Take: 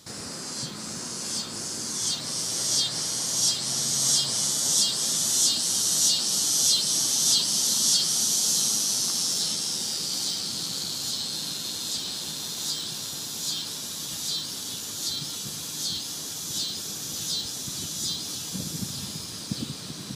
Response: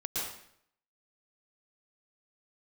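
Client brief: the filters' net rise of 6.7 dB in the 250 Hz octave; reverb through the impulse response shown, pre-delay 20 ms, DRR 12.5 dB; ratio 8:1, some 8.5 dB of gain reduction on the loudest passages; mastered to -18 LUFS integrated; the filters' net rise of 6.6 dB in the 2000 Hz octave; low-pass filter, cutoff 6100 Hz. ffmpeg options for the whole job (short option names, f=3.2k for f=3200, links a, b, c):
-filter_complex "[0:a]lowpass=6.1k,equalizer=f=250:t=o:g=8.5,equalizer=f=2k:t=o:g=8.5,acompressor=threshold=-29dB:ratio=8,asplit=2[a][b];[1:a]atrim=start_sample=2205,adelay=20[c];[b][c]afir=irnorm=-1:irlink=0,volume=-17dB[d];[a][d]amix=inputs=2:normalize=0,volume=13dB"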